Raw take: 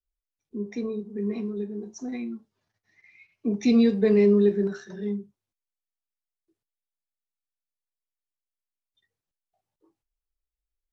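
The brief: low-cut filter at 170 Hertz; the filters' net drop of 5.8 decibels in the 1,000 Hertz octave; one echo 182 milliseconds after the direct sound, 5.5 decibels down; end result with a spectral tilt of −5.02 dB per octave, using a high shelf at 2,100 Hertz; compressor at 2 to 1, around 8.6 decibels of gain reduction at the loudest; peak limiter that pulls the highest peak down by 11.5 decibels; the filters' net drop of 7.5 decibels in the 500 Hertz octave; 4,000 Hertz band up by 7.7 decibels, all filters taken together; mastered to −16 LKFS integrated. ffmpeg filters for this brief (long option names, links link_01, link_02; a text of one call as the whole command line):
ffmpeg -i in.wav -af "highpass=170,equalizer=frequency=500:width_type=o:gain=-9,equalizer=frequency=1000:width_type=o:gain=-6,highshelf=frequency=2100:gain=6,equalizer=frequency=4000:width_type=o:gain=3.5,acompressor=threshold=-34dB:ratio=2,alimiter=level_in=8.5dB:limit=-24dB:level=0:latency=1,volume=-8.5dB,aecho=1:1:182:0.531,volume=24dB" out.wav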